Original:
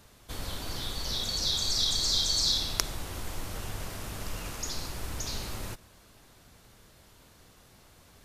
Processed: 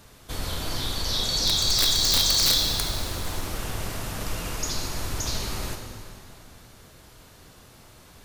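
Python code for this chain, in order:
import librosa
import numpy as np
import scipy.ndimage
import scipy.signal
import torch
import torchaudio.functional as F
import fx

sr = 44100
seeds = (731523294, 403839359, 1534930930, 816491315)

y = (np.mod(10.0 ** (18.0 / 20.0) * x + 1.0, 2.0) - 1.0) / 10.0 ** (18.0 / 20.0)
y = fx.rev_plate(y, sr, seeds[0], rt60_s=2.7, hf_ratio=0.8, predelay_ms=0, drr_db=3.5)
y = F.gain(torch.from_numpy(y), 5.0).numpy()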